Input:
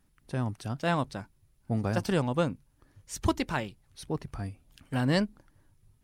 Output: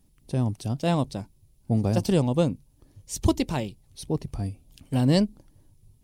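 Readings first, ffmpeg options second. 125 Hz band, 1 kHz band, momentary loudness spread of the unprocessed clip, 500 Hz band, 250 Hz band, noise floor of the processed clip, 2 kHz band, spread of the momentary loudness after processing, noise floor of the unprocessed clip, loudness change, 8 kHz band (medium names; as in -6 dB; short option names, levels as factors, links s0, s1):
+6.5 dB, 0.0 dB, 14 LU, +4.5 dB, +6.0 dB, -61 dBFS, -5.0 dB, 14 LU, -67 dBFS, +5.0 dB, +5.5 dB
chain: -af "equalizer=f=1500:w=1.1:g=-15,volume=2.11"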